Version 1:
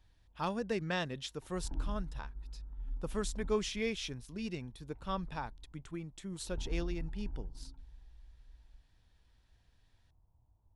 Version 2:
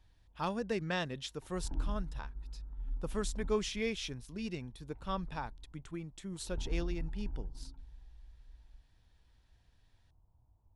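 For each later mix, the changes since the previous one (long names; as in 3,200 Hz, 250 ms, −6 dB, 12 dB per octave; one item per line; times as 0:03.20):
reverb: on, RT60 0.75 s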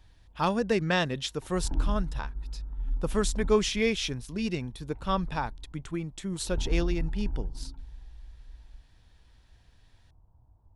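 speech +9.0 dB
background +8.0 dB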